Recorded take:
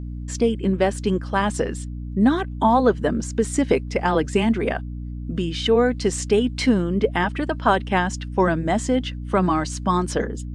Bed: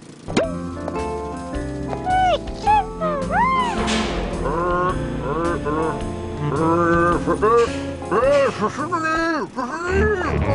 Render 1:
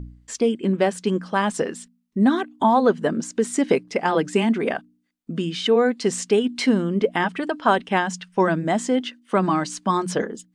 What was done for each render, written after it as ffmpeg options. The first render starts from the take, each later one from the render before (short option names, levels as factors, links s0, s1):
-af "bandreject=f=60:t=h:w=4,bandreject=f=120:t=h:w=4,bandreject=f=180:t=h:w=4,bandreject=f=240:t=h:w=4,bandreject=f=300:t=h:w=4"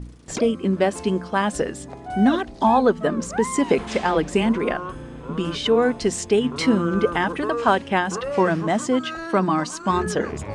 -filter_complex "[1:a]volume=0.251[s0];[0:a][s0]amix=inputs=2:normalize=0"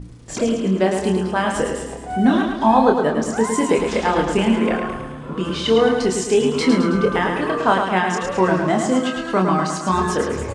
-filter_complex "[0:a]asplit=2[s0][s1];[s1]adelay=27,volume=0.596[s2];[s0][s2]amix=inputs=2:normalize=0,aecho=1:1:108|216|324|432|540|648|756:0.531|0.281|0.149|0.079|0.0419|0.0222|0.0118"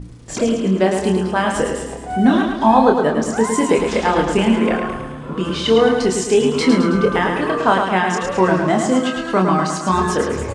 -af "volume=1.26,alimiter=limit=0.891:level=0:latency=1"